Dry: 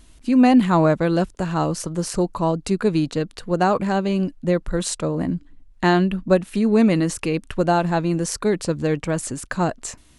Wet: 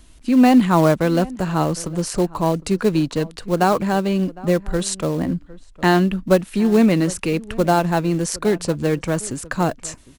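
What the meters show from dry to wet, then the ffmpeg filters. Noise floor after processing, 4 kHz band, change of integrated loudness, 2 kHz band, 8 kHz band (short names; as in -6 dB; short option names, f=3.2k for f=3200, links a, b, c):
-46 dBFS, +2.5 dB, +1.5 dB, +2.0 dB, +2.0 dB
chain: -filter_complex "[0:a]acrossover=split=380|1000[a][b][c];[b]acrusher=bits=3:mode=log:mix=0:aa=0.000001[d];[a][d][c]amix=inputs=3:normalize=0,asplit=2[e][f];[f]adelay=758,volume=-20dB,highshelf=f=4k:g=-17.1[g];[e][g]amix=inputs=2:normalize=0,volume=1.5dB"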